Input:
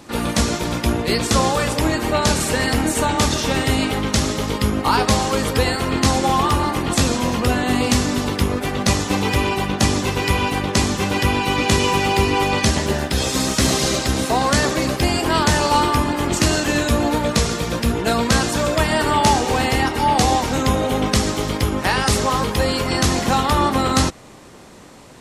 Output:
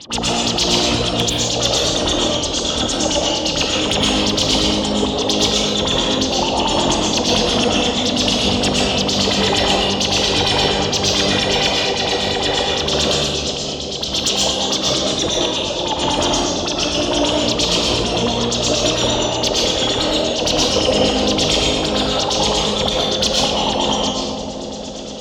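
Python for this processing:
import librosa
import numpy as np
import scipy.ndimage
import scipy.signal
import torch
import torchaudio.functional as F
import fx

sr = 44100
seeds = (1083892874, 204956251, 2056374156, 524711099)

p1 = fx.high_shelf_res(x, sr, hz=3200.0, db=8.0, q=3.0)
p2 = fx.over_compress(p1, sr, threshold_db=-19.0, ratio=-0.5)
p3 = fx.formant_shift(p2, sr, semitones=-4)
p4 = fx.filter_lfo_lowpass(p3, sr, shape='sine', hz=8.7, low_hz=460.0, high_hz=7200.0, q=5.6)
p5 = fx.cheby_harmonics(p4, sr, harmonics=(5,), levels_db=(-16,), full_scale_db=7.5)
p6 = p5 + fx.echo_bbd(p5, sr, ms=398, stages=2048, feedback_pct=74, wet_db=-8.0, dry=0)
p7 = fx.rev_freeverb(p6, sr, rt60_s=1.0, hf_ratio=0.85, predelay_ms=85, drr_db=-3.5)
y = p7 * librosa.db_to_amplitude(-11.5)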